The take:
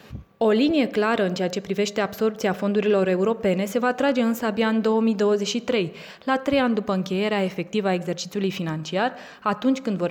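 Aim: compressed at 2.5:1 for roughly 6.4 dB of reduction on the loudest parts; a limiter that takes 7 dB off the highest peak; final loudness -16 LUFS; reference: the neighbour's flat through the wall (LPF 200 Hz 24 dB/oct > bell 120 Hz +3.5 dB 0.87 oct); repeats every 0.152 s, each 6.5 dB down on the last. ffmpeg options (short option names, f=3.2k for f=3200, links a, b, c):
-af "acompressor=threshold=-26dB:ratio=2.5,alimiter=limit=-20dB:level=0:latency=1,lowpass=f=200:w=0.5412,lowpass=f=200:w=1.3066,equalizer=f=120:t=o:w=0.87:g=3.5,aecho=1:1:152|304|456|608|760|912:0.473|0.222|0.105|0.0491|0.0231|0.0109,volume=20dB"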